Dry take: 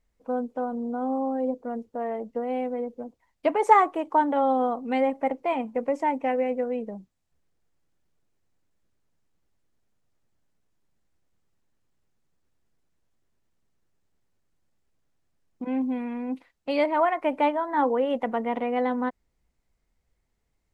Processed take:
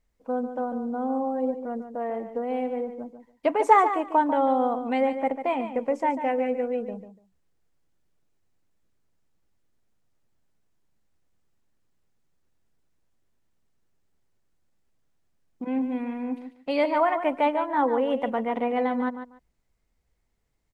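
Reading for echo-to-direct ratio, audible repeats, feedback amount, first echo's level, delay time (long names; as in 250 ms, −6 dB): −10.0 dB, 2, 17%, −10.0 dB, 145 ms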